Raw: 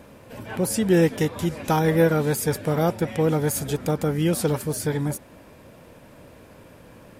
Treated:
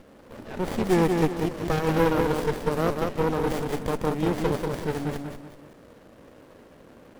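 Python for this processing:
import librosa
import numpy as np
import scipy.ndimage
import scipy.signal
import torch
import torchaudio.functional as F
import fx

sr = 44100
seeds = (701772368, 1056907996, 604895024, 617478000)

p1 = scipy.signal.sosfilt(scipy.signal.butter(2, 260.0, 'highpass', fs=sr, output='sos'), x)
p2 = p1 + fx.echo_feedback(p1, sr, ms=189, feedback_pct=35, wet_db=-4, dry=0)
y = fx.running_max(p2, sr, window=33)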